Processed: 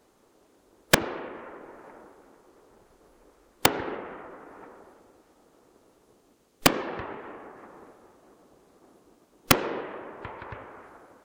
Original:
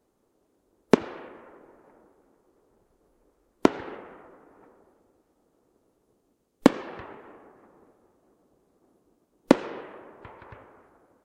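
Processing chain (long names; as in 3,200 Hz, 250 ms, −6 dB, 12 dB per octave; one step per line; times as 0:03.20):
high-shelf EQ 7,600 Hz −8 dB
wrap-around overflow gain 10.5 dB
one half of a high-frequency compander encoder only
level +5.5 dB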